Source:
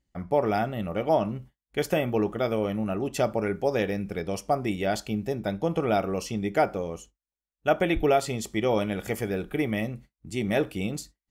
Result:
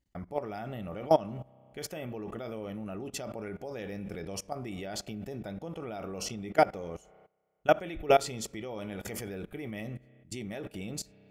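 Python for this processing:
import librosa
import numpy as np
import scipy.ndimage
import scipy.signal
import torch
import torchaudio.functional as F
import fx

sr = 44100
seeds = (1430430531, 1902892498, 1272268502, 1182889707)

y = fx.rev_spring(x, sr, rt60_s=1.7, pass_ms=(31,), chirp_ms=65, drr_db=18.5)
y = fx.level_steps(y, sr, step_db=20)
y = fx.dynamic_eq(y, sr, hz=5300.0, q=0.99, threshold_db=-53.0, ratio=4.0, max_db=4)
y = y * 10.0 ** (1.5 / 20.0)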